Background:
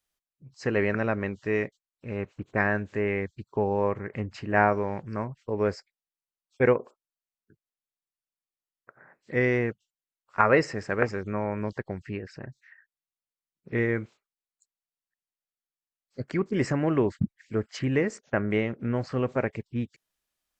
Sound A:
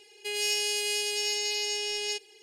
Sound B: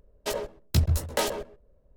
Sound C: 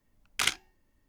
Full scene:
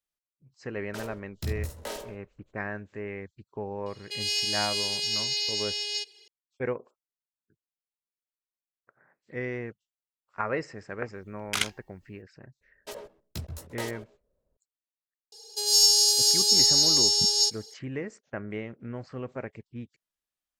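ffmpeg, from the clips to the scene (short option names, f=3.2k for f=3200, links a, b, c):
-filter_complex "[2:a]asplit=2[a][b];[1:a]asplit=2[c][d];[0:a]volume=-9.5dB[e];[a]aecho=1:1:50|76:0.631|0.15[f];[c]equalizer=f=4.2k:t=o:w=1.1:g=14.5[g];[b]lowshelf=f=100:g=-10[h];[d]firequalizer=gain_entry='entry(130,0);entry(200,-10);entry(310,-24);entry(460,8);entry(1400,-1);entry(2200,-25);entry(3800,9);entry(5600,15);entry(9100,6);entry(13000,12)':delay=0.05:min_phase=1[i];[f]atrim=end=1.96,asetpts=PTS-STARTPTS,volume=-11.5dB,afade=t=in:d=0.004:c=hsin,afade=t=out:st=1.956:d=0.004:c=hsin,adelay=680[j];[g]atrim=end=2.42,asetpts=PTS-STARTPTS,volume=-8.5dB,afade=t=in:d=0.004:c=hsin,afade=t=out:st=2.416:d=0.004:c=hsin,adelay=3860[k];[3:a]atrim=end=1.08,asetpts=PTS-STARTPTS,volume=-0.5dB,afade=t=in:d=0.004:c=hsin,afade=t=out:st=1.076:d=0.004:c=hsin,adelay=491274S[l];[h]atrim=end=1.96,asetpts=PTS-STARTPTS,volume=-10dB,afade=t=in:d=0.004:c=hsin,afade=t=out:st=1.956:d=0.004:c=hsin,adelay=12610[m];[i]atrim=end=2.42,asetpts=PTS-STARTPTS,volume=-0.5dB,afade=t=in:d=0.004:c=hsin,afade=t=out:st=2.416:d=0.004:c=hsin,adelay=15320[n];[e][j][k][l][m][n]amix=inputs=6:normalize=0"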